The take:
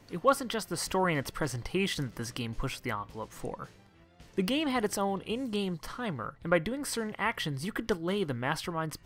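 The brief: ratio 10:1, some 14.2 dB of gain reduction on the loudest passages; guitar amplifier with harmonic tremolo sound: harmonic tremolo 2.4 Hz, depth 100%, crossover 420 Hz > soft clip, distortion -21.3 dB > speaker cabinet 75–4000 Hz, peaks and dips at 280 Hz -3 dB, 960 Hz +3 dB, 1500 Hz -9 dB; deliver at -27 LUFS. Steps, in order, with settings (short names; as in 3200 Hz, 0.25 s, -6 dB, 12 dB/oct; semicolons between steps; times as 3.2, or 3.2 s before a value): compressor 10:1, threshold -33 dBFS; harmonic tremolo 2.4 Hz, depth 100%, crossover 420 Hz; soft clip -29 dBFS; speaker cabinet 75–4000 Hz, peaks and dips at 280 Hz -3 dB, 960 Hz +3 dB, 1500 Hz -9 dB; gain +18 dB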